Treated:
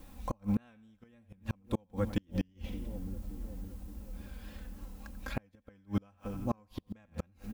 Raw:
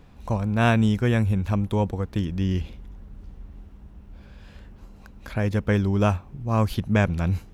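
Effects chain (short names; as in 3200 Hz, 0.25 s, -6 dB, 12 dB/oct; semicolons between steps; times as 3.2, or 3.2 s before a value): comb 3.8 ms, depth 68%; vibrato 3.6 Hz 71 cents; added noise blue -60 dBFS; on a send: split-band echo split 640 Hz, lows 0.569 s, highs 89 ms, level -15.5 dB; on the sum: flipped gate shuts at -16 dBFS, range -37 dB; gain -4 dB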